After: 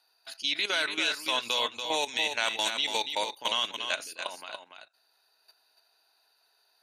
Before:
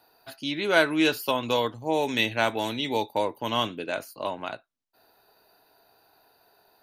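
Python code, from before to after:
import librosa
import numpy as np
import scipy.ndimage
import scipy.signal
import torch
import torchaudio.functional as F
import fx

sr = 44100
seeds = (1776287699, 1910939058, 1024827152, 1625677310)

p1 = fx.weighting(x, sr, curve='ITU-R 468')
p2 = fx.level_steps(p1, sr, step_db=14)
y = p2 + fx.echo_single(p2, sr, ms=286, db=-7.0, dry=0)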